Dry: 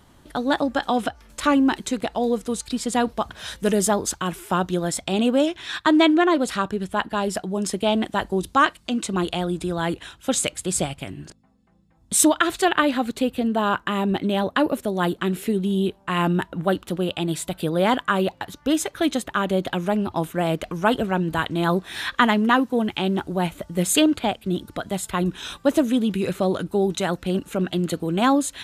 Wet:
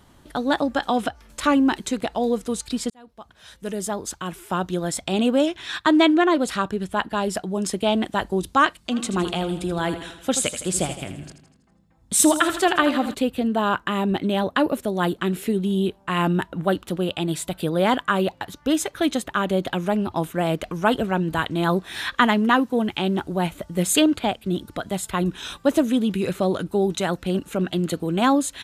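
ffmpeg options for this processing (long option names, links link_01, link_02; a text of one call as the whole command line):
ffmpeg -i in.wav -filter_complex "[0:a]asplit=3[link_01][link_02][link_03];[link_01]afade=type=out:start_time=8.91:duration=0.02[link_04];[link_02]aecho=1:1:81|162|243|324|405|486:0.282|0.149|0.0792|0.042|0.0222|0.0118,afade=type=in:start_time=8.91:duration=0.02,afade=type=out:start_time=13.13:duration=0.02[link_05];[link_03]afade=type=in:start_time=13.13:duration=0.02[link_06];[link_04][link_05][link_06]amix=inputs=3:normalize=0,asplit=2[link_07][link_08];[link_07]atrim=end=2.9,asetpts=PTS-STARTPTS,afade=type=out:start_time=2.896:duration=0.004:curve=hsin[link_09];[link_08]atrim=start=2.9,asetpts=PTS-STARTPTS,afade=type=in:duration=2.26[link_10];[link_09][link_10]concat=n=2:v=0:a=1" out.wav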